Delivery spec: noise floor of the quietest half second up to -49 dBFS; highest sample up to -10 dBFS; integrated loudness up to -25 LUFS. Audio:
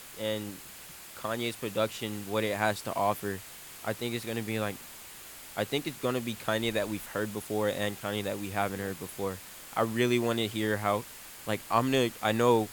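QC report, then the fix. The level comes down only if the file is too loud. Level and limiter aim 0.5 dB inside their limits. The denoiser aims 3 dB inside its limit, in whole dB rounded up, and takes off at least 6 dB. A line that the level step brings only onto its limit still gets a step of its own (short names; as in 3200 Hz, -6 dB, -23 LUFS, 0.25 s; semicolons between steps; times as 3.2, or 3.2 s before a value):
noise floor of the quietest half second -47 dBFS: fail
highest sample -11.0 dBFS: OK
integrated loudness -31.5 LUFS: OK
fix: denoiser 6 dB, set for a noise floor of -47 dBFS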